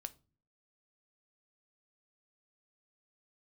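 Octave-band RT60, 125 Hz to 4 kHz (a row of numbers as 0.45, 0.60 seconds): 0.65, 0.65, 0.45, 0.30, 0.25, 0.25 seconds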